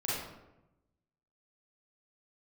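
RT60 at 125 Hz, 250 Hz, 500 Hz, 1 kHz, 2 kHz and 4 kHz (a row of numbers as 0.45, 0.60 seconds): 1.3, 1.2, 1.0, 0.90, 0.75, 0.55 seconds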